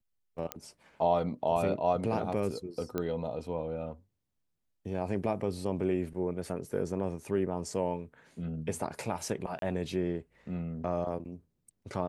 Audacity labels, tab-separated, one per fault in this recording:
0.520000	0.520000	click −16 dBFS
2.980000	2.980000	click −19 dBFS
9.590000	9.620000	drop-out 32 ms

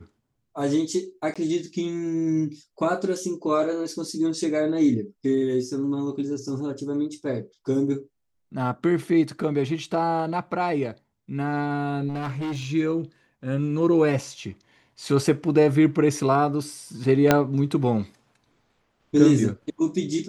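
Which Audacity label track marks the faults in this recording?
1.340000	1.360000	drop-out 16 ms
12.080000	12.670000	clipping −26 dBFS
17.310000	17.310000	click −2 dBFS

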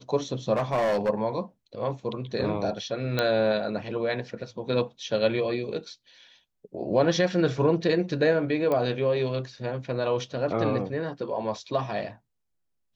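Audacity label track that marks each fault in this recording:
0.530000	1.100000	clipping −21 dBFS
3.190000	3.190000	click −11 dBFS
8.720000	8.720000	click −16 dBFS

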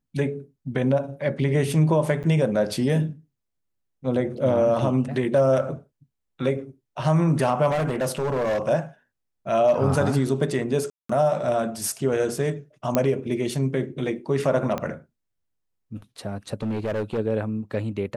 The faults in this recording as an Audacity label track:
2.230000	2.240000	drop-out 8.2 ms
7.700000	8.690000	clipping −20.5 dBFS
10.900000	11.090000	drop-out 194 ms
12.950000	12.950000	click −7 dBFS
14.780000	14.780000	click −14 dBFS
16.620000	17.190000	clipping −22.5 dBFS

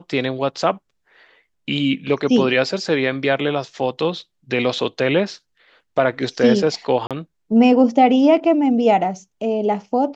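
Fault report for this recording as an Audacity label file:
7.070000	7.110000	drop-out 37 ms

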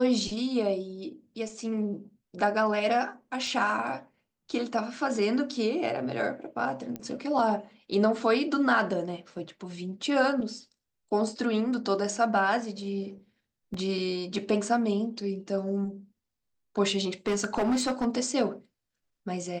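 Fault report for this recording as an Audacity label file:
3.470000	3.470000	drop-out 2.5 ms
6.960000	6.960000	click −22 dBFS
13.740000	13.740000	drop-out 3.6 ms
17.270000	18.070000	clipping −22 dBFS

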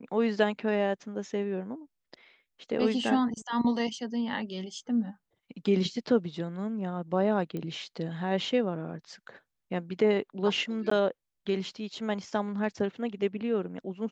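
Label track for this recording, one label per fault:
7.570000	7.570000	click −24 dBFS
10.900000	10.910000	drop-out 14 ms

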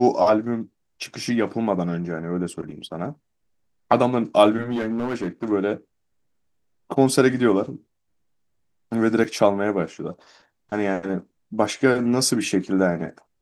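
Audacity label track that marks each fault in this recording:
4.620000	5.520000	clipping −20.5 dBFS
9.240000	9.240000	drop-out 5 ms

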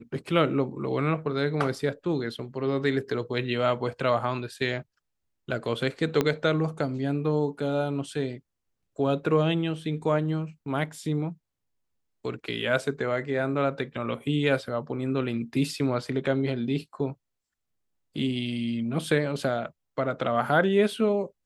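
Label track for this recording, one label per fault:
6.210000	6.210000	click −10 dBFS

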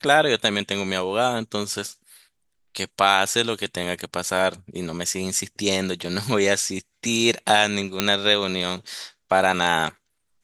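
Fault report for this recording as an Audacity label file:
8.000000	8.000000	click −2 dBFS

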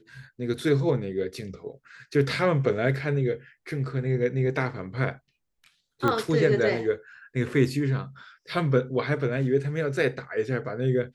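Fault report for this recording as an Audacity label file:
6.080000	6.080000	click −13 dBFS

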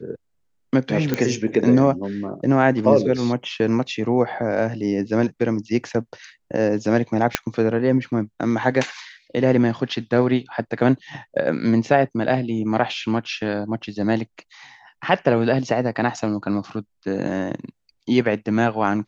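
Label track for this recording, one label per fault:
1.140000	1.140000	click −7 dBFS
7.350000	7.350000	click −1 dBFS

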